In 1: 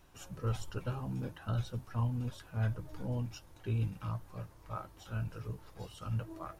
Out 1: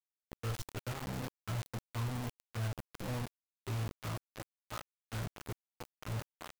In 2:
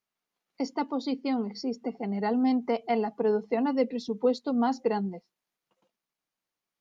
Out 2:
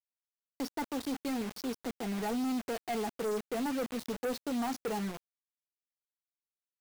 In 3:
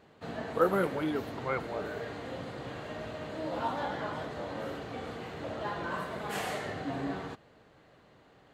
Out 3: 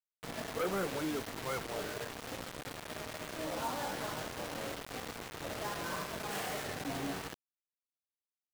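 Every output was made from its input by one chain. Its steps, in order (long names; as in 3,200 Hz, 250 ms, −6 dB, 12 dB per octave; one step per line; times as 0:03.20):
bit-depth reduction 6 bits, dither none
gain into a clipping stage and back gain 26 dB
level −4 dB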